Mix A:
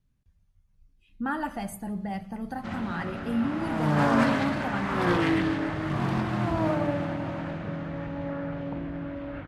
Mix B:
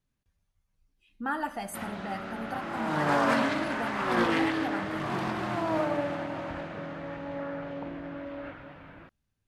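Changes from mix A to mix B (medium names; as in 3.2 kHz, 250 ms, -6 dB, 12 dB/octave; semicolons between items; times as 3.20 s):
background: entry -0.90 s; master: add tone controls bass -11 dB, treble +1 dB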